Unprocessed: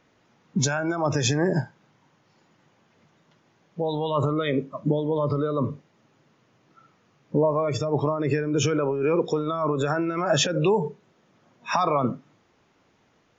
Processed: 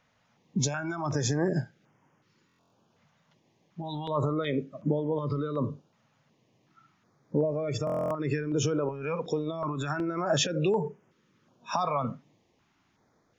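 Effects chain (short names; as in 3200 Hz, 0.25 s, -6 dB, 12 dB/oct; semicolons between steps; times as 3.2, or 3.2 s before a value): stuck buffer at 2.47/7.85, samples 1024, times 10; stepped notch 2.7 Hz 350–4000 Hz; gain -4 dB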